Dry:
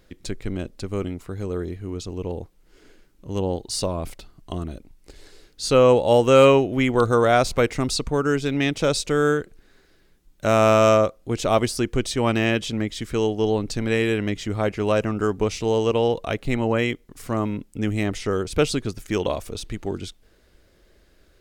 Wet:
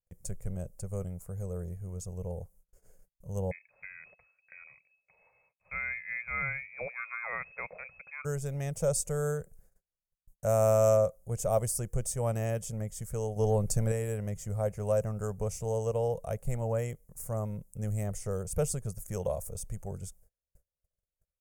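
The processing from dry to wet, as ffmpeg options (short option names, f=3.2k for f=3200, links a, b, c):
-filter_complex "[0:a]asettb=1/sr,asplit=3[a][b][c];[a]atrim=end=3.514[d];[b]atrim=start=3.51:end=8.25,asetpts=PTS-STARTPTS,afade=t=in:d=0.004:c=qsin,afade=t=out:st=4.736:d=0.004:c=qsin,lowpass=f=2.2k:t=q:w=0.5098,lowpass=f=2.2k:t=q:w=0.6013,lowpass=f=2.2k:t=q:w=0.9,lowpass=f=2.2k:t=q:w=2.563,afreqshift=-2600[e];[c]atrim=start=8.246[f];[d][e]acrossfade=d=0.004:c1=hsin:c2=qsin[g];[g][f]acrossfade=d=0.004:c1=qsin:c2=hsin,asettb=1/sr,asplit=3[h][i][j];[h]atrim=end=13.364[k];[i]atrim=start=13.36:end=13.92,asetpts=PTS-STARTPTS,afade=t=in:d=0.004:c=qsin,afade=t=out:st=0.556:d=0.004:c=qsin,acontrast=59[l];[j]atrim=start=13.916[m];[k][l]acrossfade=d=0.004:c1=hsin:c2=qsin[n];[n][m]acrossfade=d=0.004:c1=qsin:c2=hsin,bandreject=f=4k:w=8.1,agate=range=-33dB:threshold=-51dB:ratio=16:detection=peak,firequalizer=gain_entry='entry(170,0);entry(280,-24);entry(520,0);entry(1000,-11);entry(3300,-24);entry(6700,1);entry(9900,8)':delay=0.05:min_phase=1,volume=-4.5dB"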